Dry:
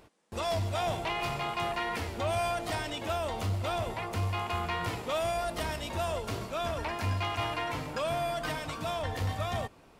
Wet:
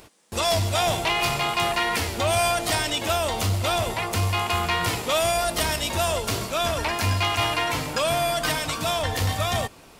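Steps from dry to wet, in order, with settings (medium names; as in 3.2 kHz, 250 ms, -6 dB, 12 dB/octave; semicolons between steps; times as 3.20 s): treble shelf 3.1 kHz +11 dB; trim +7 dB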